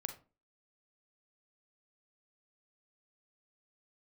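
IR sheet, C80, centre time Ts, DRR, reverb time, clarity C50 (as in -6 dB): 16.5 dB, 11 ms, 6.0 dB, 0.35 s, 10.0 dB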